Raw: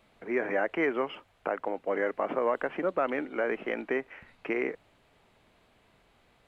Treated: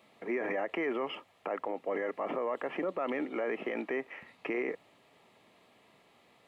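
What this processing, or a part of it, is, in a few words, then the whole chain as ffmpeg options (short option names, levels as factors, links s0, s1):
PA system with an anti-feedback notch: -af "highpass=170,asuperstop=centerf=1500:order=4:qfactor=7.1,alimiter=level_in=1.41:limit=0.0631:level=0:latency=1:release=25,volume=0.708,volume=1.26"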